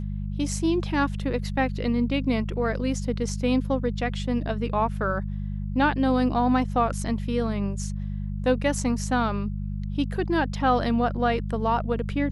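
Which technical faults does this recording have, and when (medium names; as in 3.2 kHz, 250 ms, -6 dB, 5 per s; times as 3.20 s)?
hum 50 Hz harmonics 4 -30 dBFS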